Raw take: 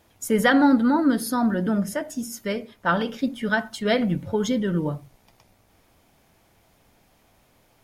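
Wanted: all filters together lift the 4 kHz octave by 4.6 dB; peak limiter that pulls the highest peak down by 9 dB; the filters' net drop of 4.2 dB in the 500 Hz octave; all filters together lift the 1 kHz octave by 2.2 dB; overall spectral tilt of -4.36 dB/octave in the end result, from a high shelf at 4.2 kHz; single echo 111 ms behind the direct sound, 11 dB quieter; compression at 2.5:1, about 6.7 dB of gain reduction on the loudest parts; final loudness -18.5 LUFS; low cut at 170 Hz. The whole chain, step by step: high-pass 170 Hz; peaking EQ 500 Hz -6.5 dB; peaking EQ 1 kHz +4.5 dB; peaking EQ 4 kHz +3.5 dB; treble shelf 4.2 kHz +4.5 dB; compression 2.5:1, threshold -24 dBFS; peak limiter -21 dBFS; delay 111 ms -11 dB; trim +11.5 dB

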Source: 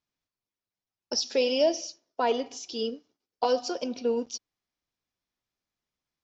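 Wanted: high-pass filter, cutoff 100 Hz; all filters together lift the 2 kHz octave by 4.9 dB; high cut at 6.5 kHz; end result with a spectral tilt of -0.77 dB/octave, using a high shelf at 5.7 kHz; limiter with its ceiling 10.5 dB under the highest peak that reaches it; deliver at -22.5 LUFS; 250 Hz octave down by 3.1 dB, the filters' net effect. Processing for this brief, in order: high-pass 100 Hz; low-pass 6.5 kHz; peaking EQ 250 Hz -3.5 dB; peaking EQ 2 kHz +6 dB; treble shelf 5.7 kHz +7 dB; trim +11.5 dB; peak limiter -12 dBFS

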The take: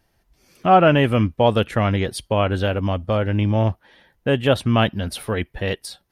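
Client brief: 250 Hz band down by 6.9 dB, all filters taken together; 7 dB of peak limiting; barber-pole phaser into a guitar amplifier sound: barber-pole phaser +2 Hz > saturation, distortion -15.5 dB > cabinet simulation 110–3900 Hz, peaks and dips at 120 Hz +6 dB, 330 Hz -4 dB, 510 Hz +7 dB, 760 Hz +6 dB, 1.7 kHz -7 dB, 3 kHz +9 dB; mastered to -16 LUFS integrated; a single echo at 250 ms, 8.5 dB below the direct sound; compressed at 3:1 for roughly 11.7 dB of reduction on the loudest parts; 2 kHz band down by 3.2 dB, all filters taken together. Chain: peaking EQ 250 Hz -8.5 dB; peaking EQ 2 kHz -4.5 dB; compression 3:1, threshold -27 dBFS; peak limiter -22.5 dBFS; delay 250 ms -8.5 dB; barber-pole phaser +2 Hz; saturation -28 dBFS; cabinet simulation 110–3900 Hz, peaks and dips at 120 Hz +6 dB, 330 Hz -4 dB, 510 Hz +7 dB, 760 Hz +6 dB, 1.7 kHz -7 dB, 3 kHz +9 dB; trim +18.5 dB

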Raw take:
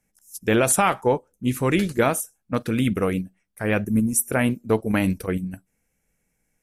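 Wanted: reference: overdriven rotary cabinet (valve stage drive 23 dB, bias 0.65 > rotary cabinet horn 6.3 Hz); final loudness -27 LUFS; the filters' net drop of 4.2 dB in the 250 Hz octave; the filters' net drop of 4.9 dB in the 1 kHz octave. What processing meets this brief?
peaking EQ 250 Hz -5 dB; peaking EQ 1 kHz -6.5 dB; valve stage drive 23 dB, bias 0.65; rotary cabinet horn 6.3 Hz; trim +5.5 dB

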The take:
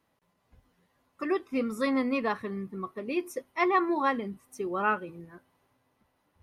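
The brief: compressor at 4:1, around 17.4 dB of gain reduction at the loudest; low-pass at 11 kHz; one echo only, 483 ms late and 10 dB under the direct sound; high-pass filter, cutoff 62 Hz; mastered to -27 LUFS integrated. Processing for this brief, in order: high-pass 62 Hz; low-pass 11 kHz; compression 4:1, threshold -43 dBFS; delay 483 ms -10 dB; trim +17.5 dB

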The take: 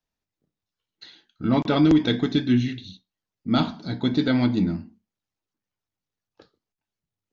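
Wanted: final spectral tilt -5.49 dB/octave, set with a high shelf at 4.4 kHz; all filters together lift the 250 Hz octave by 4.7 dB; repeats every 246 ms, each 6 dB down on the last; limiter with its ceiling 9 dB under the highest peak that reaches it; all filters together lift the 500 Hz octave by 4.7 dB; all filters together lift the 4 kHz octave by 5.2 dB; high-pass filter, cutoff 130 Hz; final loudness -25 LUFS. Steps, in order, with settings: high-pass 130 Hz; peaking EQ 250 Hz +4.5 dB; peaking EQ 500 Hz +4.5 dB; peaking EQ 4 kHz +3.5 dB; treble shelf 4.4 kHz +5.5 dB; peak limiter -11.5 dBFS; feedback delay 246 ms, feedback 50%, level -6 dB; trim -3.5 dB

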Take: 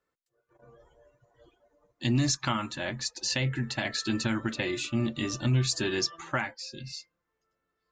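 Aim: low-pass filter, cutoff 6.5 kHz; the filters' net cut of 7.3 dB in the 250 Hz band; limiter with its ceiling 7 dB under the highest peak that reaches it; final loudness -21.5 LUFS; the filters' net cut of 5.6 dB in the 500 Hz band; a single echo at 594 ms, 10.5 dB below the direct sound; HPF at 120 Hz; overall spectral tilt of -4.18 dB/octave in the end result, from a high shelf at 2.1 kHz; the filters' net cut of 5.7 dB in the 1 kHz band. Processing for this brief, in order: high-pass 120 Hz; low-pass 6.5 kHz; peaking EQ 250 Hz -7.5 dB; peaking EQ 500 Hz -3 dB; peaking EQ 1 kHz -5.5 dB; treble shelf 2.1 kHz -4.5 dB; peak limiter -25.5 dBFS; delay 594 ms -10.5 dB; trim +15 dB

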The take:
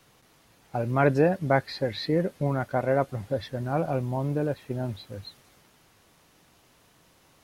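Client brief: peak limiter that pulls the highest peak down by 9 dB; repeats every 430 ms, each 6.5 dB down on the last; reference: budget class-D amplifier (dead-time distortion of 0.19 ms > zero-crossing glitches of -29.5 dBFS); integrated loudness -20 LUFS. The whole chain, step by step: peak limiter -17 dBFS; feedback delay 430 ms, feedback 47%, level -6.5 dB; dead-time distortion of 0.19 ms; zero-crossing glitches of -29.5 dBFS; trim +9 dB

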